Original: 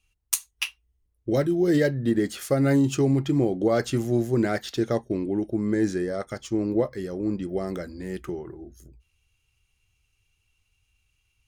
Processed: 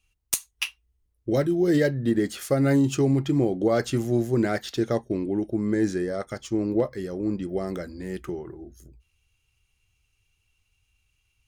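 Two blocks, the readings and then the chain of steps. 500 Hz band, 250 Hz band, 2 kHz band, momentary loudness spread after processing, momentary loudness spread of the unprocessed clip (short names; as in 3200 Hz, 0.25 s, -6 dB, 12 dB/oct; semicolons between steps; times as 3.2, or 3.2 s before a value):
0.0 dB, 0.0 dB, 0.0 dB, 12 LU, 12 LU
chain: one-sided fold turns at -10.5 dBFS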